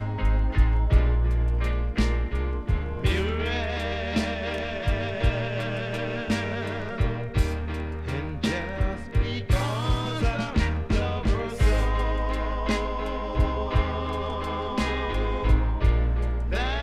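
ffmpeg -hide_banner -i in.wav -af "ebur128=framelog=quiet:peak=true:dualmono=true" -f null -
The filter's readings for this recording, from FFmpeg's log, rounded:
Integrated loudness:
  I:         -23.8 LUFS
  Threshold: -33.8 LUFS
Loudness range:
  LRA:         2.6 LU
  Threshold: -44.1 LUFS
  LRA low:   -25.4 LUFS
  LRA high:  -22.8 LUFS
True peak:
  Peak:       -8.7 dBFS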